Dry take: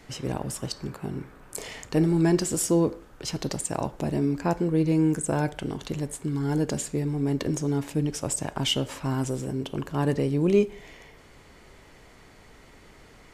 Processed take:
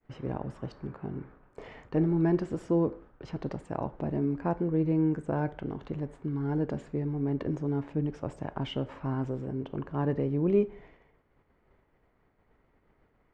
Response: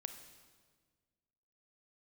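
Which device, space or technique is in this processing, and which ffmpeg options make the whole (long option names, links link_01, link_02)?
hearing-loss simulation: -af "lowpass=1600,agate=range=-33dB:threshold=-43dB:ratio=3:detection=peak,volume=-4dB"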